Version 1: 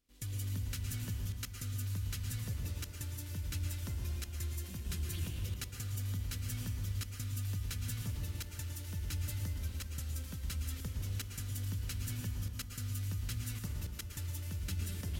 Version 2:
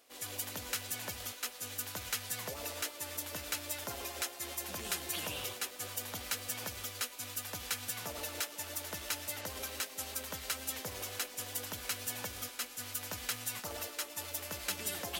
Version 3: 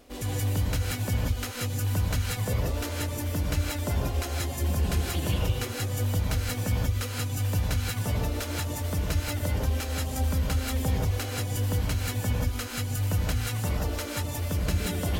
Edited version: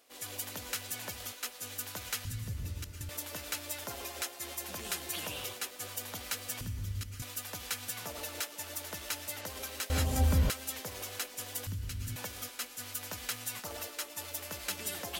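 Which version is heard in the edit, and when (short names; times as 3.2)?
2
2.25–3.09 from 1
6.61–7.22 from 1
9.9–10.5 from 3
11.67–12.16 from 1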